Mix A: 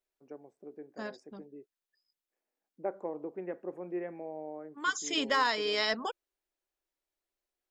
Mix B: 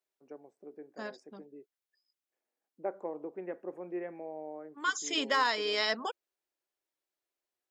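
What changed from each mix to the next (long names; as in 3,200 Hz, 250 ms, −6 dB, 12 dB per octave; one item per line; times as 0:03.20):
master: add high-pass filter 220 Hz 6 dB per octave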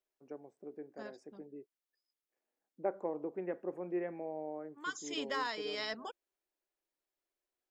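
second voice −9.0 dB
master: remove high-pass filter 220 Hz 6 dB per octave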